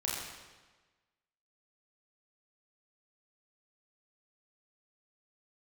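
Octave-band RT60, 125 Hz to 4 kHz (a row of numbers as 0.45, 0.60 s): 1.3, 1.3, 1.3, 1.3, 1.2, 1.1 s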